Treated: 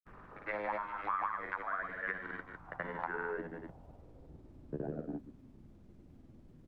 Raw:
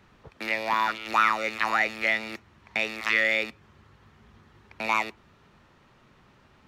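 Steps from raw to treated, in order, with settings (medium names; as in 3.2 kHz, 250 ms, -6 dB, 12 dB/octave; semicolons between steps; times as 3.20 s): pitch bend over the whole clip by -9.5 st starting unshifted; low-pass sweep 1.4 kHz -> 280 Hz, 2.36–4.95 s; on a send: delay 130 ms -11 dB; on the sum: compression 6:1, threshold -36 dBFS, peak gain reduction 23 dB; added noise brown -63 dBFS; granulator, pitch spread up and down by 0 st; trim +2 dB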